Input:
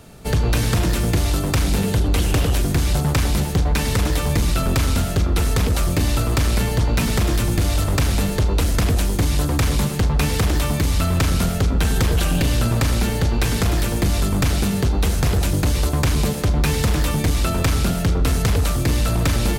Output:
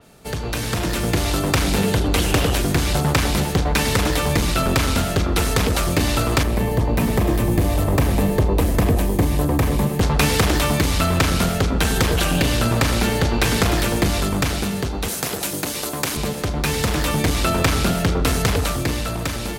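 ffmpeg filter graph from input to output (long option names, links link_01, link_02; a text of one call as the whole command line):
ffmpeg -i in.wav -filter_complex "[0:a]asettb=1/sr,asplit=3[link_01][link_02][link_03];[link_01]atrim=end=6.434[link_04];[link_02]atrim=start=6.43:end=10.01,asetpts=PTS-STARTPTS,afade=type=in:duration=0.004:curve=qsin,afade=type=out:start_time=3.576:duration=0.004:curve=qsin,equalizer=frequency=5100:width_type=o:width=2.8:gain=-14,bandreject=frequency=1400:width=6.5[link_05];[link_03]atrim=start=10.006[link_06];[link_04][link_05]acrossfade=duration=0.004:curve1=hsin:curve2=qsin[link_07];[link_07][link_06]acrossfade=duration=0.004:curve1=qsin:curve2=hsin,asettb=1/sr,asplit=3[link_08][link_09][link_10];[link_08]atrim=end=15.084[link_11];[link_09]atrim=start=15.08:end=16.17,asetpts=PTS-STARTPTS,afade=type=in:duration=0.004:curve=qsin,afade=type=out:start_time=1.086:duration=0.004:curve=qsin,highpass=180,highshelf=frequency=6700:gain=11[link_12];[link_10]atrim=start=16.166[link_13];[link_11][link_12]acrossfade=duration=0.004:curve1=hsin:curve2=qsin[link_14];[link_14][link_13]acrossfade=duration=0.004:curve1=qsin:curve2=hsin,lowshelf=frequency=160:gain=-9.5,dynaudnorm=framelen=110:gausssize=17:maxgain=11.5dB,adynamicequalizer=threshold=0.0282:dfrequency=4700:dqfactor=0.7:tfrequency=4700:tqfactor=0.7:attack=5:release=100:ratio=0.375:range=2:mode=cutabove:tftype=highshelf,volume=-3dB" out.wav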